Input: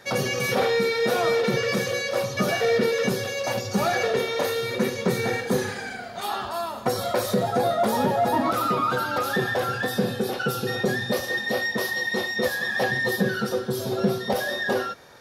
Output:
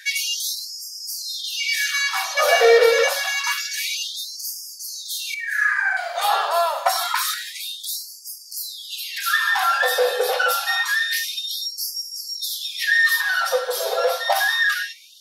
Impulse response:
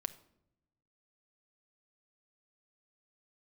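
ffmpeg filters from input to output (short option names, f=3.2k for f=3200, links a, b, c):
-filter_complex "[0:a]asettb=1/sr,asplit=3[a][b][c];[a]atrim=end=5.344[d];[b]atrim=start=5.34:end=5.97,asetpts=PTS-STARTPTS,afade=t=in:d=0.004:c=qsin,afade=t=out:st=0.626:d=0.004:c=qsin,highshelf=f=2.4k:t=q:w=3:g=-11.5[e];[c]atrim=start=5.966[f];[d][e]acrossfade=d=0.004:c1=hsin:c2=qsin[g];[g][f]acrossfade=d=0.004:c1=qsin:c2=hsin,asplit=2[h][i];[1:a]atrim=start_sample=2205[j];[i][j]afir=irnorm=-1:irlink=0,volume=5dB[k];[h][k]amix=inputs=2:normalize=0,afftfilt=real='re*gte(b*sr/1024,420*pow(4700/420,0.5+0.5*sin(2*PI*0.27*pts/sr)))':imag='im*gte(b*sr/1024,420*pow(4700/420,0.5+0.5*sin(2*PI*0.27*pts/sr)))':win_size=1024:overlap=0.75,volume=1dB"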